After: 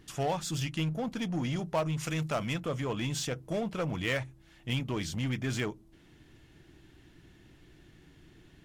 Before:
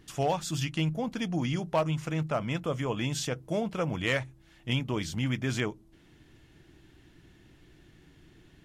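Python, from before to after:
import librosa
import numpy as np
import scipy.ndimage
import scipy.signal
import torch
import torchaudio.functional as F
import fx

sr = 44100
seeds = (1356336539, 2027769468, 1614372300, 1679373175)

p1 = fx.high_shelf(x, sr, hz=fx.line((1.99, 2200.0), (2.53, 3300.0)), db=11.0, at=(1.99, 2.53), fade=0.02)
p2 = 10.0 ** (-31.0 / 20.0) * (np.abs((p1 / 10.0 ** (-31.0 / 20.0) + 3.0) % 4.0 - 2.0) - 1.0)
p3 = p1 + (p2 * 10.0 ** (-8.0 / 20.0))
y = p3 * 10.0 ** (-3.0 / 20.0)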